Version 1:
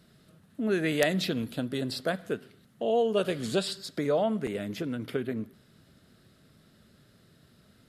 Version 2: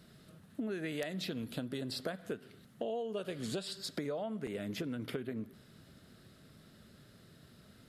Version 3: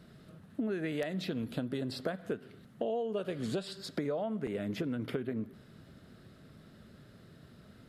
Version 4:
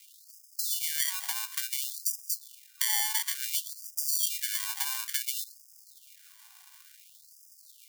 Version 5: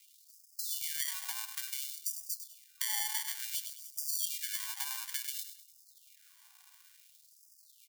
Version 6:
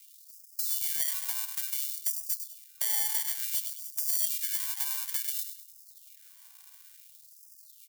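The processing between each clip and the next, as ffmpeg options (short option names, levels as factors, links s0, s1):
-af "acompressor=threshold=0.0158:ratio=10,volume=1.12"
-af "highshelf=f=3100:g=-9.5,volume=1.58"
-af "acrusher=samples=34:mix=1:aa=0.000001,crystalizer=i=8:c=0,afftfilt=real='re*gte(b*sr/1024,710*pow(4900/710,0.5+0.5*sin(2*PI*0.57*pts/sr)))':imag='im*gte(b*sr/1024,710*pow(4900/710,0.5+0.5*sin(2*PI*0.57*pts/sr)))':win_size=1024:overlap=0.75,volume=0.708"
-af "aecho=1:1:101|202|303|404:0.335|0.134|0.0536|0.0214,volume=0.473"
-af "crystalizer=i=1:c=0,asoftclip=type=tanh:threshold=0.422"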